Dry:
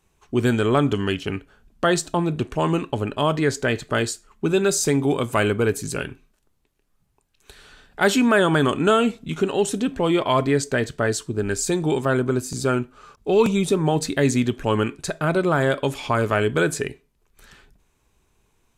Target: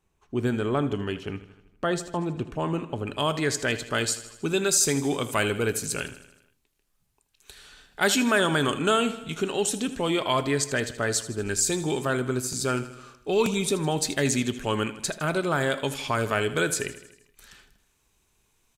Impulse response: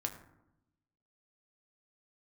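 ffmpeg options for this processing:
-af "asetnsamples=nb_out_samples=441:pad=0,asendcmd='3.07 highshelf g 9.5',highshelf=frequency=2100:gain=-4,aecho=1:1:79|158|237|316|395|474:0.178|0.105|0.0619|0.0365|0.0215|0.0127,volume=-6.5dB"

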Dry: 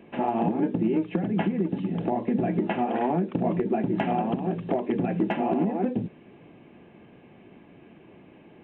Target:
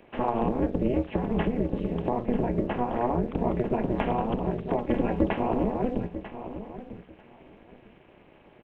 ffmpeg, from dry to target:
ffmpeg -i in.wav -filter_complex "[0:a]asettb=1/sr,asplit=3[link_01][link_02][link_03];[link_01]atrim=end=2.264[link_04];[link_02]atrim=start=2.26:end=3.25,asetpts=PTS-STARTPTS,afade=type=in:duration=0.004:curve=qsin,afade=type=out:start_time=0.986:duration=0.004:curve=qsin,highshelf=frequency=3200:gain=-12[link_05];[link_03]atrim=start=3.246[link_06];[link_04][link_05]acrossfade=duration=0.004:curve1=hsin:curve2=qsin[link_07];[link_07][link_06]acrossfade=duration=0.004:curve1=qsin:curve2=hsin,acrossover=split=390|640[link_08][link_09][link_10];[link_08]aeval=exprs='sgn(val(0))*max(abs(val(0))-0.0015,0)':channel_layout=same[link_11];[link_11][link_09][link_10]amix=inputs=3:normalize=0,asettb=1/sr,asplit=3[link_12][link_13][link_14];[link_12]atrim=end=4.774[link_15];[link_13]atrim=start=4.77:end=5.27,asetpts=PTS-STARTPTS,afade=type=in:duration=0.004:curve=qsin,afade=type=out:start_time=0.496:duration=0.004:curve=qsin,aecho=1:1:3.6:0.65,atrim=end_sample=22050[link_16];[link_14]atrim=start=5.266[link_17];[link_15][link_16]acrossfade=duration=0.004:curve1=hsin:curve2=qsin[link_18];[link_18][link_17]acrossfade=duration=0.004:curve1=qsin:curve2=hsin,aecho=1:1:944|1888:0.251|0.0452,tremolo=f=240:d=0.974,volume=3dB" out.wav

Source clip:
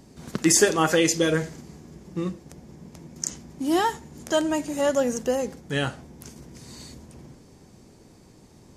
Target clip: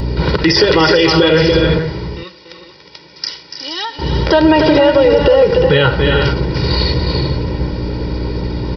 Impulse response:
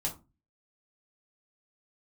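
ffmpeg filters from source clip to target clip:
-filter_complex "[0:a]aresample=11025,aresample=44100,acrossover=split=140|3000[link_01][link_02][link_03];[link_02]acompressor=threshold=-22dB:ratio=6[link_04];[link_01][link_04][link_03]amix=inputs=3:normalize=0,aecho=1:1:2.1:0.99,aeval=exprs='val(0)+0.00708*(sin(2*PI*60*n/s)+sin(2*PI*2*60*n/s)/2+sin(2*PI*3*60*n/s)/3+sin(2*PI*4*60*n/s)/4+sin(2*PI*5*60*n/s)/5)':channel_layout=same,acompressor=threshold=-29dB:ratio=5,asettb=1/sr,asplit=3[link_05][link_06][link_07];[link_05]atrim=end=1.794[link_08];[link_06]atrim=start=1.79:end=3.99,asetpts=PTS-STARTPTS,afade=type=in:duration=0.004:curve=qsin,afade=type=out:start_time=2.196:duration=0.004:curve=qsin,aderivative[link_09];[link_07]atrim=start=3.986[link_10];[link_08][link_09]acrossfade=duration=0.004:curve1=hsin:curve2=qsin[link_11];[link_11][link_10]acrossfade=duration=0.004:curve1=qsin:curve2=hsin,aecho=1:1:287|297|361|443:0.335|0.15|0.316|0.237,alimiter=level_in=26dB:limit=-1dB:release=50:level=0:latency=1,volume=-1dB"

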